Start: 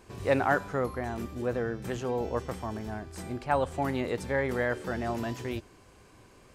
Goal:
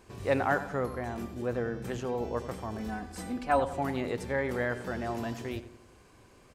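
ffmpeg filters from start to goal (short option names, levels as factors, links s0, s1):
-filter_complex "[0:a]asettb=1/sr,asplit=3[s0][s1][s2];[s0]atrim=end=2.784[s3];[s1]atrim=start=2.78:end=3.6,asetpts=PTS-STARTPTS,afade=t=in:d=0.004:c=qsin,afade=t=out:st=0.816:d=0.004:c=qsin,aecho=1:1:4:0.99,atrim=end_sample=36162[s4];[s2]atrim=start=3.596[s5];[s3][s4]acrossfade=d=0.004:c1=hsin:c2=qsin[s6];[s6][s5]acrossfade=d=0.004:c1=qsin:c2=hsin,asplit=2[s7][s8];[s8]adelay=91,lowpass=f=2100:p=1,volume=0.251,asplit=2[s9][s10];[s10]adelay=91,lowpass=f=2100:p=1,volume=0.52,asplit=2[s11][s12];[s12]adelay=91,lowpass=f=2100:p=1,volume=0.52,asplit=2[s13][s14];[s14]adelay=91,lowpass=f=2100:p=1,volume=0.52,asplit=2[s15][s16];[s16]adelay=91,lowpass=f=2100:p=1,volume=0.52[s17];[s9][s11][s13][s15][s17]amix=inputs=5:normalize=0[s18];[s7][s18]amix=inputs=2:normalize=0,volume=0.794"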